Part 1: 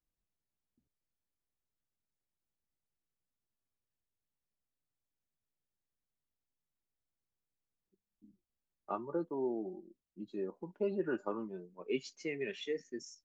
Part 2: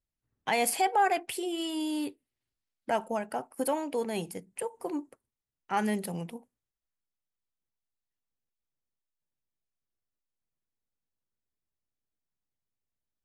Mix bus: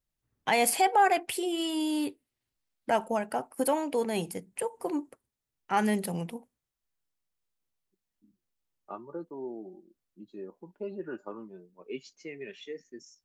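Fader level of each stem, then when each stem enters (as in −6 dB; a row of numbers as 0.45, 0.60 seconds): −3.0, +2.5 decibels; 0.00, 0.00 seconds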